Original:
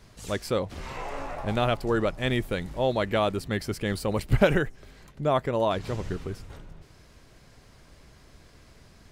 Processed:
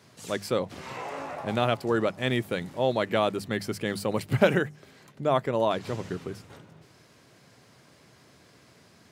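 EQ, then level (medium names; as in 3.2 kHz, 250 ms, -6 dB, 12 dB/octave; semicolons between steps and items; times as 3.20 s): high-pass 110 Hz 24 dB/octave; hum notches 50/100/150/200 Hz; 0.0 dB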